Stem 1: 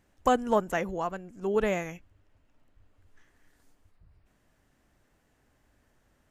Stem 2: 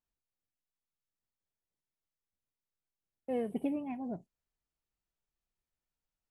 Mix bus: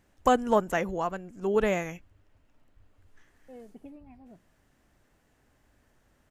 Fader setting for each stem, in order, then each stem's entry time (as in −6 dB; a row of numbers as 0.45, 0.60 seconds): +1.5, −13.5 decibels; 0.00, 0.20 seconds